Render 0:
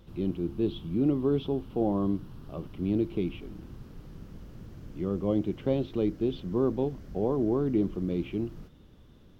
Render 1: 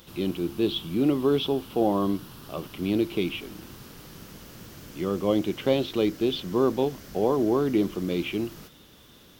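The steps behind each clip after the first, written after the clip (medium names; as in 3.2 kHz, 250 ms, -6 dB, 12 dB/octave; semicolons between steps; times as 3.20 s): tilt EQ +3.5 dB/octave; trim +9 dB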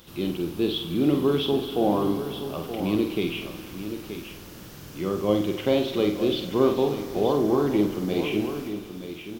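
doubling 48 ms -6 dB; delay 926 ms -10 dB; bit-crushed delay 96 ms, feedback 80%, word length 8-bit, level -14.5 dB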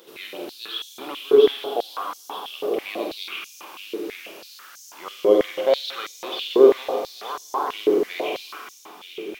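on a send at -3.5 dB: reverberation RT60 1.3 s, pre-delay 69 ms; on the sum: step-sequenced high-pass 6.1 Hz 420–6200 Hz; trim -1 dB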